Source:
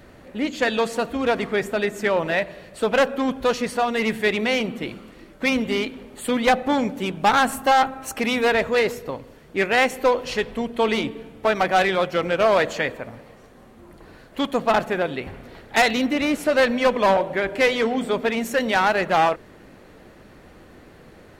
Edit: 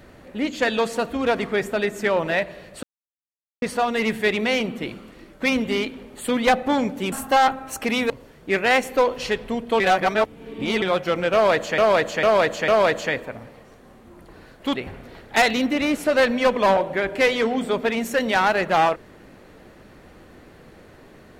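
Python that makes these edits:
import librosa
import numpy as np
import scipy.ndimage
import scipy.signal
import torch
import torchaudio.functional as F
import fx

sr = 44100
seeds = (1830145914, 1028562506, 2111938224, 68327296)

y = fx.edit(x, sr, fx.silence(start_s=2.83, length_s=0.79),
    fx.cut(start_s=7.12, length_s=0.35),
    fx.cut(start_s=8.45, length_s=0.72),
    fx.reverse_span(start_s=10.87, length_s=1.02),
    fx.repeat(start_s=12.4, length_s=0.45, count=4),
    fx.cut(start_s=14.47, length_s=0.68), tone=tone)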